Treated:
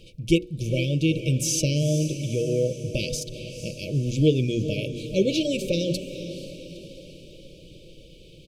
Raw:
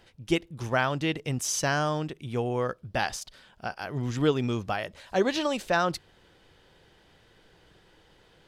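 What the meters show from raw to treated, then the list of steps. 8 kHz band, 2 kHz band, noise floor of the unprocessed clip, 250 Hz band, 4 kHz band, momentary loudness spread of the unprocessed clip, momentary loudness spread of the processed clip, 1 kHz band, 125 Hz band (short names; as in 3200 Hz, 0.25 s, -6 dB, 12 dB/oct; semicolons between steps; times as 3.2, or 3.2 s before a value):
+4.5 dB, -5.0 dB, -60 dBFS, +6.0 dB, +4.0 dB, 9 LU, 14 LU, under -35 dB, +8.5 dB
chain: notches 60/120/180/240/300/360/420/480/540/600 Hz; FFT band-reject 630–2200 Hz; low shelf 190 Hz +7 dB; comb 6.1 ms, depth 33%; in parallel at +1 dB: compressor, threshold -40 dBFS, peak gain reduction 22 dB; on the sum: diffused feedback echo 0.467 s, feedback 51%, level -11 dB; gain +1.5 dB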